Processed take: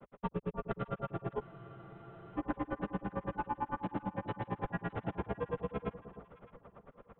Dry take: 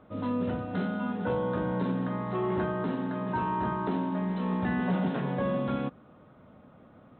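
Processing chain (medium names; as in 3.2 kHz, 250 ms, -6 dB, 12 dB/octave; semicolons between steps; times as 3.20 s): low-pass 2.9 kHz 24 dB/octave; peaking EQ 170 Hz -13 dB 0.69 oct; compression, threshold -35 dBFS, peak gain reduction 8.5 dB; granulator 62 ms, grains 8.9 per s, pitch spread up and down by 0 st; frequency shift -71 Hz; on a send: echo whose repeats swap between lows and highs 306 ms, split 990 Hz, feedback 55%, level -12.5 dB; on the sum: spectral freeze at 1.44 s, 0.92 s; trim +6.5 dB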